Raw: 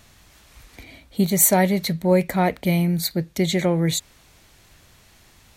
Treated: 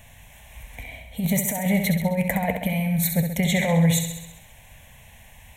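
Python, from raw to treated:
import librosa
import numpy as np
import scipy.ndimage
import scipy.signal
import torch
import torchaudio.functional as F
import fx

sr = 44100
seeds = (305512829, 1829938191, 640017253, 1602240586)

y = fx.fixed_phaser(x, sr, hz=1300.0, stages=6)
y = fx.over_compress(y, sr, threshold_db=-24.0, ratio=-0.5)
y = fx.echo_feedback(y, sr, ms=66, feedback_pct=60, wet_db=-7.0)
y = y * librosa.db_to_amplitude(3.0)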